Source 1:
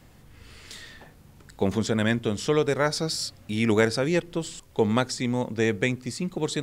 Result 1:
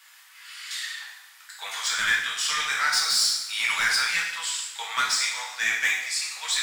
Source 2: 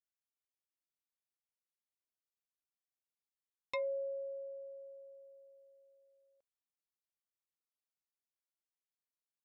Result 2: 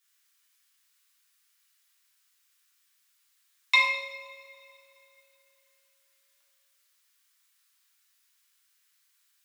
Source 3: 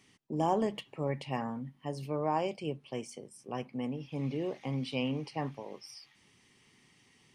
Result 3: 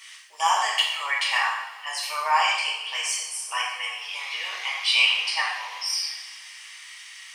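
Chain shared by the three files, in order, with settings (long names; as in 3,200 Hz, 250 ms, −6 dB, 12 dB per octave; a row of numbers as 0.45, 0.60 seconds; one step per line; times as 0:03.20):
inverse Chebyshev high-pass filter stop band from 280 Hz, stop band 70 dB
soft clipping −25.5 dBFS
coupled-rooms reverb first 0.81 s, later 3.2 s, from −21 dB, DRR −5 dB
loudness normalisation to −24 LKFS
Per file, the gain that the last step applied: +5.0, +19.0, +17.5 decibels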